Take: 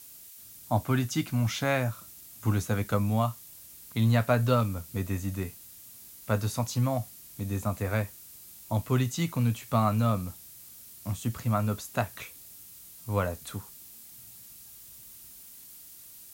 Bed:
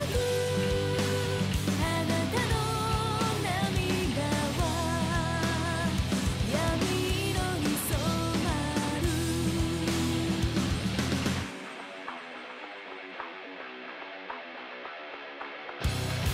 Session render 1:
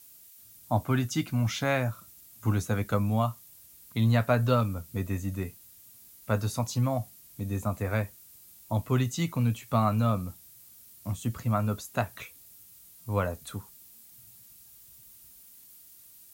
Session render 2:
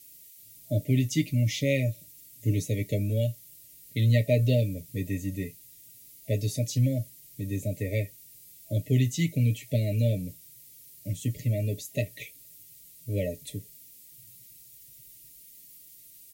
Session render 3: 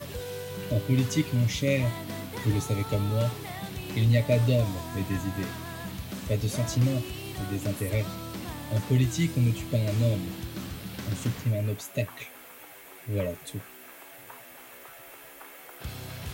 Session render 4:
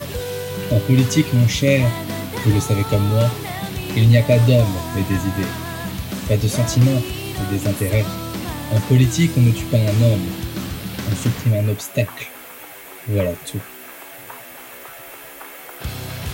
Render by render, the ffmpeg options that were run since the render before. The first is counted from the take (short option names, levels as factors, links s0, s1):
-af "afftdn=nr=6:nf=-49"
-af "afftfilt=real='re*(1-between(b*sr/4096,650,1800))':imag='im*(1-between(b*sr/4096,650,1800))':win_size=4096:overlap=0.75,aecho=1:1:6.9:0.65"
-filter_complex "[1:a]volume=0.376[s0];[0:a][s0]amix=inputs=2:normalize=0"
-af "volume=3.16,alimiter=limit=0.708:level=0:latency=1"